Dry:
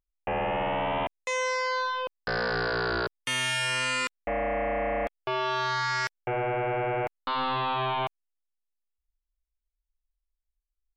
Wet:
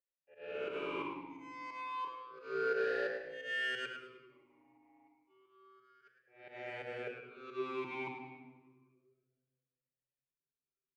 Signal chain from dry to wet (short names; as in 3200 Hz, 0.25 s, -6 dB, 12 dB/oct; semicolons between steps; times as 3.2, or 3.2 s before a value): 3.85–6.02 gate -25 dBFS, range -44 dB; comb 7.2 ms, depth 81%; compressor 1.5:1, threshold -38 dBFS, peak gain reduction 5 dB; auto swell 0.66 s; limiter -29.5 dBFS, peak gain reduction 4 dB; added harmonics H 2 -11 dB, 7 -23 dB, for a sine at -29.5 dBFS; pump 88 bpm, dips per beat 2, -18 dB, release 0.112 s; frequency-shifting echo 0.106 s, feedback 32%, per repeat +120 Hz, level -10.5 dB; shoebox room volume 1500 m³, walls mixed, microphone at 1.2 m; vowel sweep e-u 0.3 Hz; gain +8.5 dB